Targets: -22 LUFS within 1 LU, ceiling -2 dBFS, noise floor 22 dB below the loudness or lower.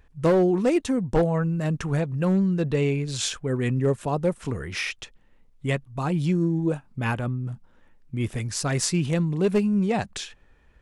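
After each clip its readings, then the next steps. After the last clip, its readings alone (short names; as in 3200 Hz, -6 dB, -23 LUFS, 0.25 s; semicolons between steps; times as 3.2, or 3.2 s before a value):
clipped 0.5%; flat tops at -14.5 dBFS; loudness -25.0 LUFS; peak -14.5 dBFS; loudness target -22.0 LUFS
-> clip repair -14.5 dBFS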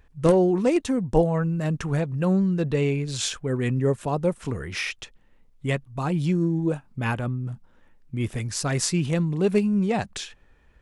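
clipped 0.0%; loudness -24.5 LUFS; peak -6.0 dBFS; loudness target -22.0 LUFS
-> gain +2.5 dB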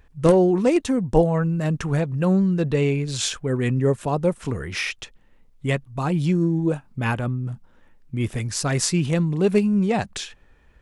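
loudness -22.0 LUFS; peak -3.5 dBFS; noise floor -55 dBFS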